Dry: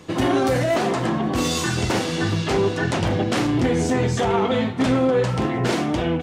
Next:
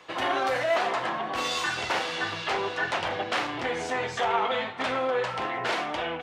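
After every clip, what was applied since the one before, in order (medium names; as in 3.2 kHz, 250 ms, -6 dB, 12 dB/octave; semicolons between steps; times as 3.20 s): three-band isolator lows -22 dB, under 580 Hz, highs -13 dB, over 4.2 kHz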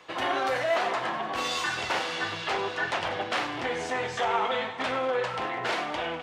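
thinning echo 98 ms, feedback 76%, level -15.5 dB; trim -1 dB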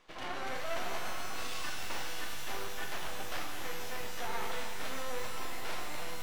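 half-wave rectifier; pitch-shifted reverb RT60 3.2 s, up +12 st, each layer -2 dB, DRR 5.5 dB; trim -8.5 dB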